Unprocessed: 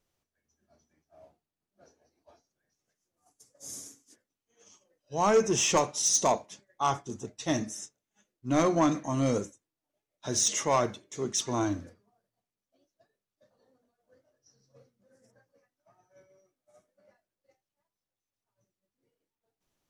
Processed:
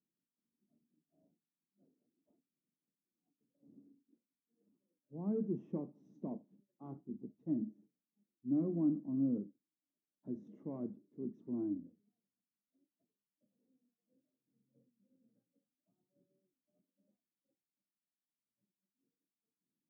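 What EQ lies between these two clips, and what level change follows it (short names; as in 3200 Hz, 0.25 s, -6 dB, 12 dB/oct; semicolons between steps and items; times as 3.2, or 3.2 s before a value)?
Butterworth band-pass 220 Hz, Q 1.6; low shelf 220 Hz -6.5 dB; 0.0 dB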